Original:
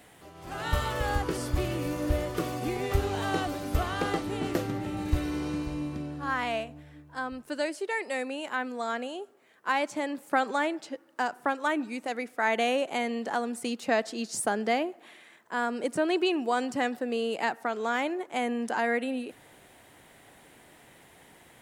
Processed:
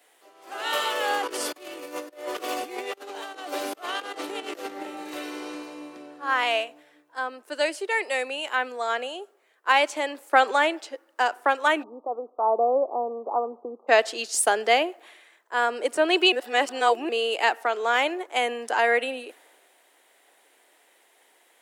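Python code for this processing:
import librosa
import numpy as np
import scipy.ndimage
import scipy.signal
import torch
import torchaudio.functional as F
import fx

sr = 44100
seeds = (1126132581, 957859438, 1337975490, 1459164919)

y = fx.over_compress(x, sr, threshold_db=-34.0, ratio=-0.5, at=(1.23, 4.83))
y = fx.steep_lowpass(y, sr, hz=1200.0, slope=96, at=(11.82, 13.87), fade=0.02)
y = fx.edit(y, sr, fx.reverse_span(start_s=16.32, length_s=0.77), tone=tone)
y = scipy.signal.sosfilt(scipy.signal.butter(4, 370.0, 'highpass', fs=sr, output='sos'), y)
y = fx.dynamic_eq(y, sr, hz=2900.0, q=2.5, threshold_db=-49.0, ratio=4.0, max_db=6)
y = fx.band_widen(y, sr, depth_pct=40)
y = F.gain(torch.from_numpy(y), 5.5).numpy()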